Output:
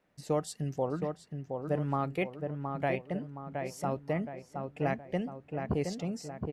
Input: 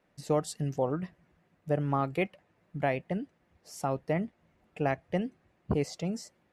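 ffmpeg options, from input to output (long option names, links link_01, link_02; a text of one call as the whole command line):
ffmpeg -i in.wav -filter_complex "[0:a]asplit=2[link_01][link_02];[link_02]adelay=719,lowpass=frequency=2100:poles=1,volume=-5dB,asplit=2[link_03][link_04];[link_04]adelay=719,lowpass=frequency=2100:poles=1,volume=0.47,asplit=2[link_05][link_06];[link_06]adelay=719,lowpass=frequency=2100:poles=1,volume=0.47,asplit=2[link_07][link_08];[link_08]adelay=719,lowpass=frequency=2100:poles=1,volume=0.47,asplit=2[link_09][link_10];[link_10]adelay=719,lowpass=frequency=2100:poles=1,volume=0.47,asplit=2[link_11][link_12];[link_12]adelay=719,lowpass=frequency=2100:poles=1,volume=0.47[link_13];[link_01][link_03][link_05][link_07][link_09][link_11][link_13]amix=inputs=7:normalize=0,volume=-2.5dB" out.wav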